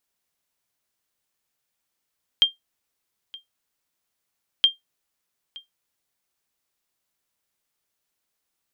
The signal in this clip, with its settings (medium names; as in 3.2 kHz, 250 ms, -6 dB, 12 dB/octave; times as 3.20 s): sonar ping 3.19 kHz, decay 0.15 s, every 2.22 s, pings 2, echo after 0.92 s, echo -23 dB -7.5 dBFS